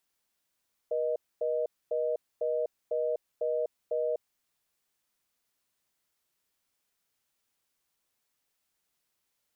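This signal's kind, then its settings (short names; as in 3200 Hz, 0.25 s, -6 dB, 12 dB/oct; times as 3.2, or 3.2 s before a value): call progress tone reorder tone, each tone -29.5 dBFS 3.28 s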